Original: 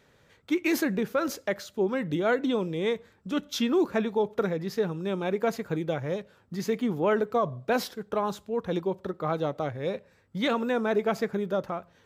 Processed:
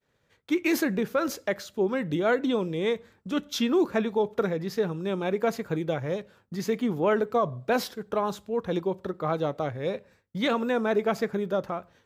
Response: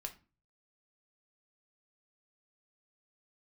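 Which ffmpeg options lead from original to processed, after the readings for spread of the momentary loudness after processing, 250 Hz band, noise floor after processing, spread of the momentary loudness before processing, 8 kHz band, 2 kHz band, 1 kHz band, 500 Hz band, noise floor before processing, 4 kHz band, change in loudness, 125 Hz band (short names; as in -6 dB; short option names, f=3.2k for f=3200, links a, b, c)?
7 LU, +0.5 dB, -70 dBFS, 7 LU, +1.0 dB, +1.0 dB, +1.0 dB, +1.0 dB, -63 dBFS, +1.0 dB, +1.0 dB, +0.5 dB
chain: -filter_complex "[0:a]agate=range=-33dB:threshold=-53dB:ratio=3:detection=peak,asplit=2[a][b];[1:a]atrim=start_sample=2205[c];[b][c]afir=irnorm=-1:irlink=0,volume=-15dB[d];[a][d]amix=inputs=2:normalize=0"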